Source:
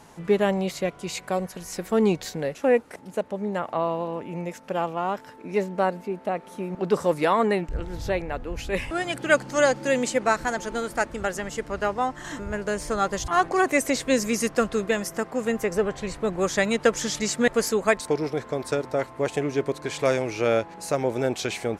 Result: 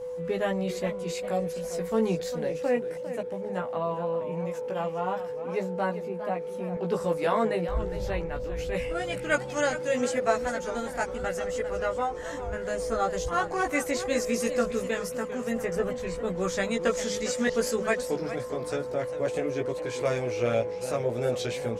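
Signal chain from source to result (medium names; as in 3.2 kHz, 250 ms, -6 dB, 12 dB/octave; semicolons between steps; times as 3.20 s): whistle 500 Hz -29 dBFS; chorus voices 6, 0.18 Hz, delay 17 ms, depth 1.1 ms; modulated delay 403 ms, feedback 33%, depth 171 cents, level -12 dB; trim -2.5 dB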